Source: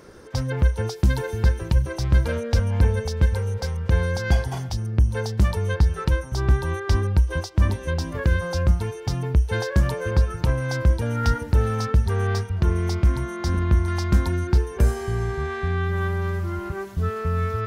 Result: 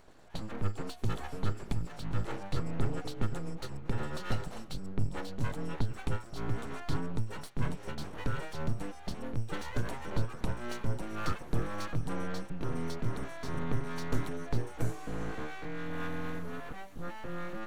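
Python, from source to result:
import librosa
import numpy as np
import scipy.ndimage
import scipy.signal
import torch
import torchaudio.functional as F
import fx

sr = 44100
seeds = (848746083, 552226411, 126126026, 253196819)

y = fx.pitch_glide(x, sr, semitones=-3.5, runs='ending unshifted')
y = np.abs(y)
y = fx.notch(y, sr, hz=5000.0, q=10.0)
y = y * librosa.db_to_amplitude(-8.5)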